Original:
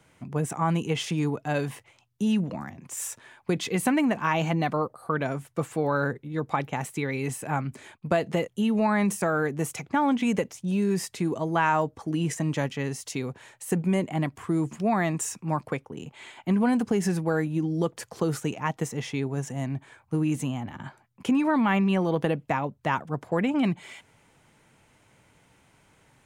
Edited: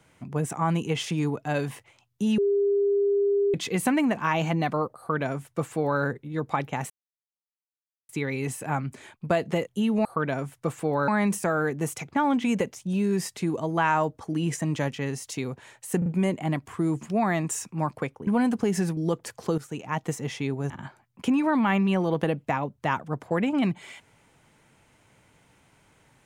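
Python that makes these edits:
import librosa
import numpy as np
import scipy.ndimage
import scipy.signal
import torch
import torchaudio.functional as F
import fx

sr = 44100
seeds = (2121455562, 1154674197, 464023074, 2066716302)

y = fx.edit(x, sr, fx.bleep(start_s=2.38, length_s=1.16, hz=402.0, db=-19.5),
    fx.duplicate(start_s=4.98, length_s=1.03, to_s=8.86),
    fx.insert_silence(at_s=6.9, length_s=1.19),
    fx.stutter(start_s=13.76, slice_s=0.04, count=3),
    fx.cut(start_s=15.97, length_s=0.58),
    fx.cut(start_s=17.25, length_s=0.45),
    fx.fade_in_from(start_s=18.31, length_s=0.41, floor_db=-13.5),
    fx.cut(start_s=19.43, length_s=1.28), tone=tone)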